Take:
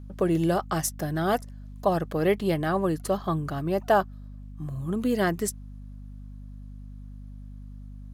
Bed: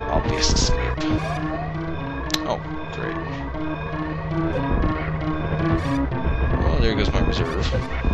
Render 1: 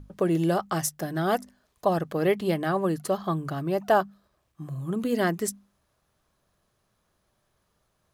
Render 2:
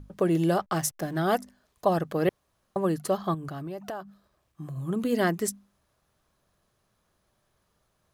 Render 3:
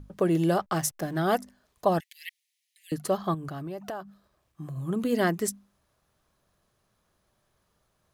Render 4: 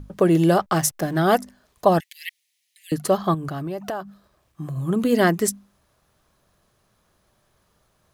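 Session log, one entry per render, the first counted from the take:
notches 50/100/150/200/250 Hz
0.61–1.17 backlash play -41.5 dBFS; 2.29–2.76 room tone; 3.34–4.77 compressor, threshold -33 dBFS
2–2.92 steep high-pass 1900 Hz 96 dB/oct
gain +7 dB

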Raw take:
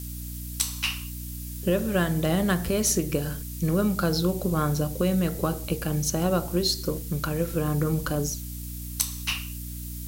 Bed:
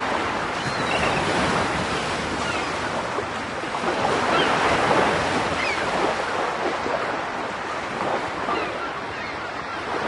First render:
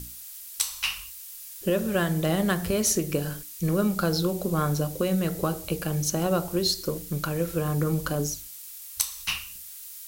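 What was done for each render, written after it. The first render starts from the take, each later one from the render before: notches 60/120/180/240/300 Hz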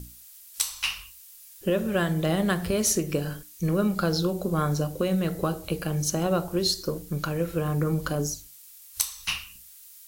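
noise print and reduce 7 dB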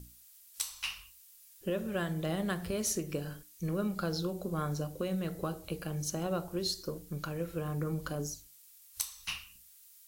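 gain -9 dB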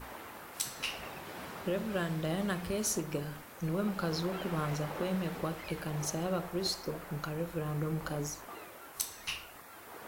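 add bed -23 dB

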